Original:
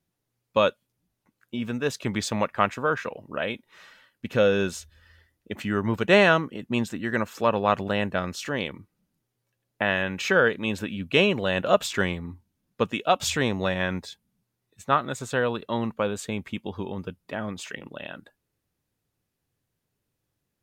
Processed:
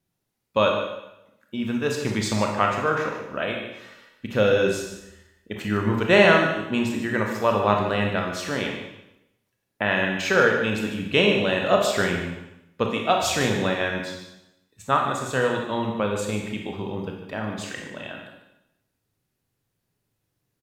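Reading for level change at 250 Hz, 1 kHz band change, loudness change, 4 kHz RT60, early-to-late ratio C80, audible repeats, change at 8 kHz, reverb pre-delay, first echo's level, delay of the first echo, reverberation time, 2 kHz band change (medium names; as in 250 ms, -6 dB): +2.5 dB, +2.5 dB, +2.5 dB, 0.80 s, 5.5 dB, 1, +2.5 dB, 24 ms, -10.5 dB, 148 ms, 0.85 s, +2.5 dB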